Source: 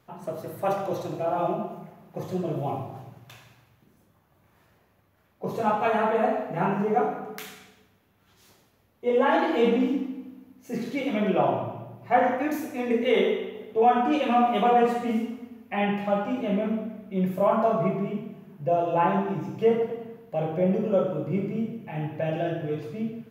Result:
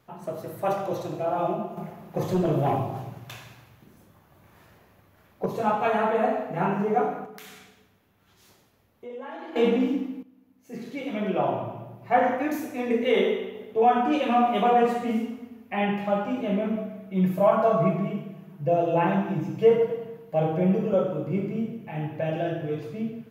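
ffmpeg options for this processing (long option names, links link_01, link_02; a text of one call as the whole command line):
ffmpeg -i in.wav -filter_complex "[0:a]asettb=1/sr,asplit=3[link_01][link_02][link_03];[link_01]atrim=end=1.774[link_04];[link_02]atrim=start=1.77:end=5.46,asetpts=PTS-STARTPTS,afade=type=in:duration=0.004:curve=qsin,afade=type=out:start_time=3.686:duration=0.004:curve=qsin,aeval=exprs='0.141*sin(PI/2*1.41*val(0)/0.141)':channel_layout=same[link_05];[link_03]atrim=start=5.456[link_06];[link_04][link_05]acrossfade=duration=0.004:curve1=hsin:curve2=qsin[link_07];[link_07][link_06]acrossfade=duration=0.004:curve1=qsin:curve2=hsin,asettb=1/sr,asplit=3[link_08][link_09][link_10];[link_08]atrim=end=7.254[link_11];[link_09]atrim=start=7.25:end=9.56,asetpts=PTS-STARTPTS,afade=type=in:duration=0.004:curve=qsin,afade=type=out:start_time=2.306:duration=0.004:curve=qsin,acompressor=threshold=-41dB:ratio=3:attack=3.2:release=140:knee=1:detection=peak[link_12];[link_10]atrim=start=9.556[link_13];[link_11][link_12]acrossfade=duration=0.004:curve1=hsin:curve2=qsin[link_14];[link_14][link_13]acrossfade=duration=0.004:curve1=qsin:curve2=hsin,asettb=1/sr,asplit=3[link_15][link_16][link_17];[link_15]atrim=end=16.754[link_18];[link_16]atrim=start=16.75:end=20.94,asetpts=PTS-STARTPTS,afade=type=in:duration=0.004:curve=qsin,afade=type=out:start_time=4.186:duration=0.004:curve=qsin,aecho=1:1:6.3:0.65,atrim=end_sample=184779[link_19];[link_17]atrim=start=20.936[link_20];[link_18][link_19]acrossfade=duration=0.004:curve1=hsin:curve2=qsin[link_21];[link_21][link_20]acrossfade=duration=0.004:curve1=qsin:curve2=hsin,asplit=2[link_22][link_23];[link_22]atrim=end=10.23,asetpts=PTS-STARTPTS,afade=type=out:start_time=10.226:duration=0.004:curve=hsin:silence=0.211349[link_24];[link_23]atrim=start=10.23,asetpts=PTS-STARTPTS,afade=type=in:duration=1.65:silence=0.211349[link_25];[link_24][link_25]concat=n=2:v=0:a=1" out.wav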